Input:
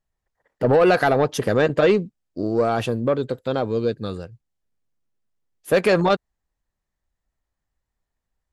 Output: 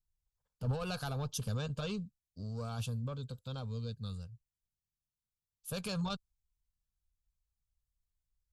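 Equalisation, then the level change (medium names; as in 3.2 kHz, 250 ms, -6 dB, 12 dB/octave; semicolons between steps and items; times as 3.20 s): amplifier tone stack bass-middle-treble 6-0-2; peaking EQ 680 Hz -3 dB 0.77 oct; static phaser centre 800 Hz, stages 4; +8.5 dB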